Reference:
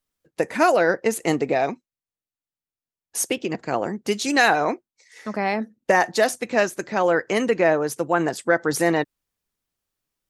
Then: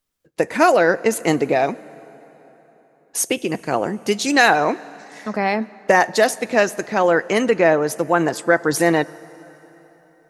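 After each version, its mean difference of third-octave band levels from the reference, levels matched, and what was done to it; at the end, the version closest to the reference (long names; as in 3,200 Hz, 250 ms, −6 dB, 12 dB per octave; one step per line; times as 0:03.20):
2.0 dB: de-essing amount 25%
dense smooth reverb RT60 4.1 s, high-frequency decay 0.7×, DRR 19.5 dB
level +3.5 dB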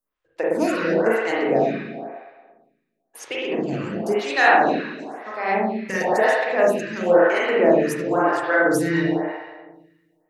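8.5 dB: spring reverb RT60 1.4 s, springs 36/57 ms, chirp 55 ms, DRR −6 dB
phaser with staggered stages 0.98 Hz
level −2 dB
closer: first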